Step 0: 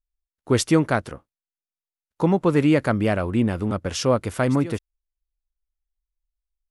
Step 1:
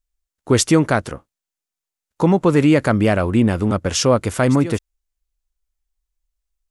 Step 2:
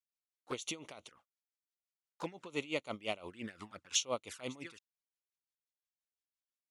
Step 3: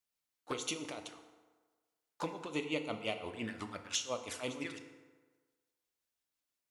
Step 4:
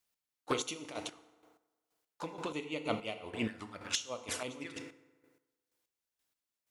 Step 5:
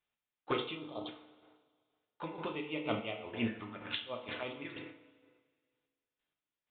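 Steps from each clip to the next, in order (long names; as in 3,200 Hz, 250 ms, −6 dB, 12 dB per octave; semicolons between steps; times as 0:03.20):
parametric band 7,100 Hz +4.5 dB 0.67 octaves; in parallel at 0 dB: brickwall limiter −13.5 dBFS, peak gain reduction 7.5 dB
resonant band-pass 3,400 Hz, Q 0.72; flanger swept by the level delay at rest 4.5 ms, full sweep at −26 dBFS; tremolo with a sine in dB 5.8 Hz, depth 19 dB; level −4 dB
downward compressor 4 to 1, threshold −40 dBFS, peak gain reduction 11.5 dB; feedback delay network reverb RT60 1.4 s, low-frequency decay 0.85×, high-frequency decay 0.6×, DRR 6 dB; level +5.5 dB
square-wave tremolo 2.1 Hz, depth 65%, duty 30%; level +6 dB
time-frequency box erased 0:00.77–0:01.07, 1,300–3,100 Hz; coupled-rooms reverb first 0.36 s, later 1.9 s, from −18 dB, DRR 3.5 dB; downsampling to 8,000 Hz; level −1.5 dB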